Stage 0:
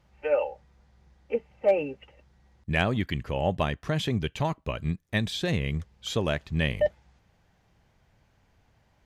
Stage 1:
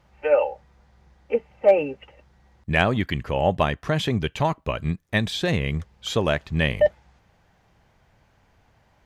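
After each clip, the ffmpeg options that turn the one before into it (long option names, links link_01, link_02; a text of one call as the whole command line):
ffmpeg -i in.wav -af "equalizer=frequency=990:width=0.51:gain=4,volume=3dB" out.wav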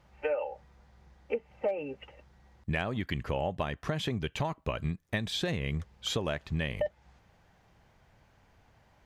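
ffmpeg -i in.wav -af "acompressor=threshold=-25dB:ratio=12,volume=-2.5dB" out.wav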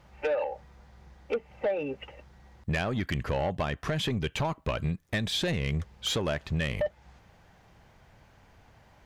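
ffmpeg -i in.wav -af "asoftclip=type=tanh:threshold=-27.5dB,volume=5.5dB" out.wav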